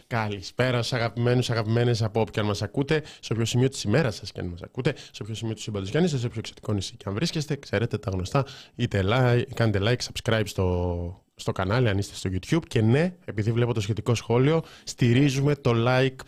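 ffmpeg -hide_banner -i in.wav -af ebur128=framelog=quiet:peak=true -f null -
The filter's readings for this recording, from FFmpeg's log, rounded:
Integrated loudness:
  I:         -25.7 LUFS
  Threshold: -35.7 LUFS
Loudness range:
  LRA:         4.5 LU
  Threshold: -46.1 LUFS
  LRA low:   -28.5 LUFS
  LRA high:  -24.1 LUFS
True peak:
  Peak:      -10.1 dBFS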